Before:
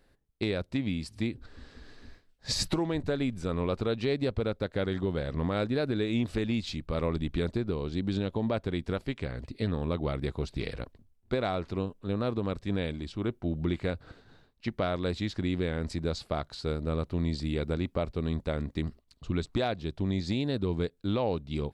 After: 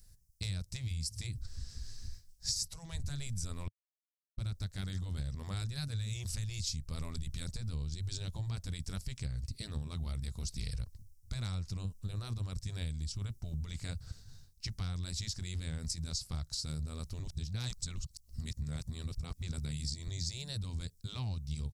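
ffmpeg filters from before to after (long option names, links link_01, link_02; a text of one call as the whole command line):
ffmpeg -i in.wav -filter_complex "[0:a]asplit=5[link_01][link_02][link_03][link_04][link_05];[link_01]atrim=end=3.68,asetpts=PTS-STARTPTS,afade=type=out:start_time=3.676:duration=0.004:curve=hsin[link_06];[link_02]atrim=start=3.68:end=4.38,asetpts=PTS-STARTPTS,volume=0[link_07];[link_03]atrim=start=4.38:end=17.202,asetpts=PTS-STARTPTS,afade=type=in:duration=0.004:curve=hsin[link_08];[link_04]atrim=start=17.198:end=20.082,asetpts=PTS-STARTPTS,areverse[link_09];[link_05]atrim=start=20.078[link_10];[link_06][link_07][link_08]concat=n=3:v=0:a=1[link_11];[link_11][link_09]acrossfade=duration=0.004:curve1=hsin:curve2=hsin[link_12];[link_12][link_10]acrossfade=duration=0.004:curve1=hsin:curve2=hsin,afftfilt=real='re*lt(hypot(re,im),0.178)':imag='im*lt(hypot(re,im),0.178)':win_size=1024:overlap=0.75,firequalizer=gain_entry='entry(100,0);entry(300,-26);entry(820,-22);entry(3600,-12);entry(5400,7)':delay=0.05:min_phase=1,acompressor=threshold=-42dB:ratio=8,volume=8.5dB" out.wav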